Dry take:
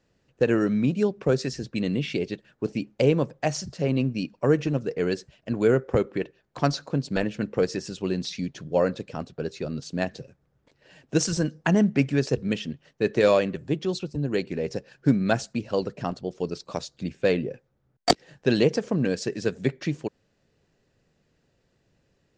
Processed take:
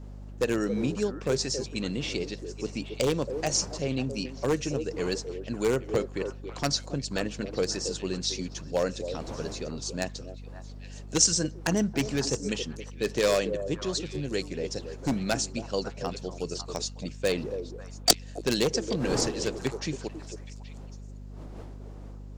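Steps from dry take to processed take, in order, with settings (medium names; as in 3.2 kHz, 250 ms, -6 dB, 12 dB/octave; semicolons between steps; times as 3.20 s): one-sided wavefolder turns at -12.5 dBFS; wind noise 450 Hz -41 dBFS; tone controls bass -3 dB, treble +15 dB; hum 50 Hz, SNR 11 dB; on a send: repeats whose band climbs or falls 275 ms, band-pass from 410 Hz, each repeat 1.4 oct, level -6.5 dB; on the sum: trim -4.5 dB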